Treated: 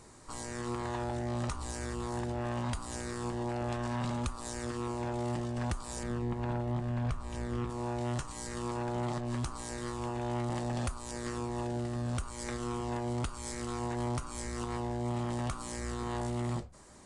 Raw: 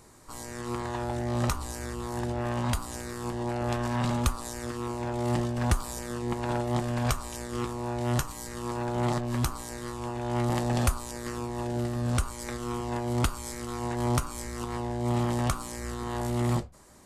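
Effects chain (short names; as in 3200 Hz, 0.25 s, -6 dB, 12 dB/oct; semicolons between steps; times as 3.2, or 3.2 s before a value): 6.03–7.7 tone controls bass +7 dB, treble -10 dB; compressor 3:1, threshold -32 dBFS, peak gain reduction 11 dB; soft clip -24.5 dBFS, distortion -24 dB; AAC 96 kbps 22050 Hz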